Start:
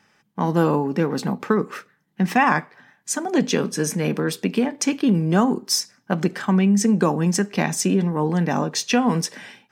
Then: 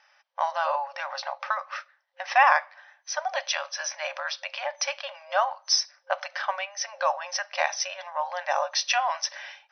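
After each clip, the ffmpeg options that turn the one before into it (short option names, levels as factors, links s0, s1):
-af "afftfilt=real='re*between(b*sr/4096,530,6100)':imag='im*between(b*sr/4096,530,6100)':win_size=4096:overlap=0.75"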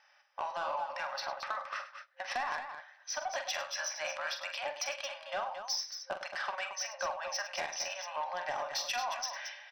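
-af "acompressor=threshold=0.0562:ratio=16,asoftclip=type=tanh:threshold=0.0708,aecho=1:1:45|102|224:0.376|0.211|0.376,volume=0.596"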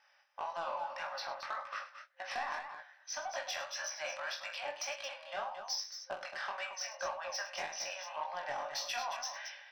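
-af "flanger=delay=17.5:depth=6.5:speed=1.8"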